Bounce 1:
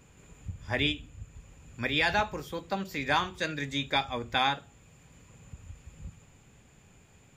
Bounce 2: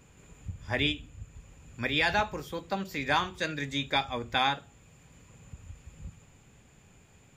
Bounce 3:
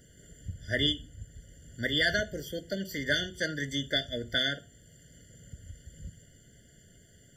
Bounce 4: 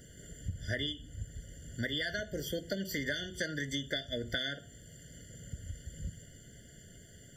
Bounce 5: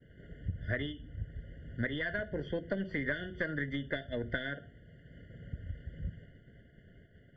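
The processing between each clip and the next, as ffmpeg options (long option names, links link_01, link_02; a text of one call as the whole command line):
ffmpeg -i in.wav -af anull out.wav
ffmpeg -i in.wav -af "highshelf=frequency=3200:gain=8.5,afftfilt=real='re*eq(mod(floor(b*sr/1024/710),2),0)':imag='im*eq(mod(floor(b*sr/1024/710),2),0)':win_size=1024:overlap=0.75" out.wav
ffmpeg -i in.wav -af "acompressor=threshold=-35dB:ratio=16,volume=3.5dB" out.wav
ffmpeg -i in.wav -af "aeval=exprs='0.106*(cos(1*acos(clip(val(0)/0.106,-1,1)))-cos(1*PI/2))+0.0075*(cos(4*acos(clip(val(0)/0.106,-1,1)))-cos(4*PI/2))':channel_layout=same,lowpass=frequency=2400:width=0.5412,lowpass=frequency=2400:width=1.3066,agate=range=-33dB:threshold=-50dB:ratio=3:detection=peak,volume=1.5dB" out.wav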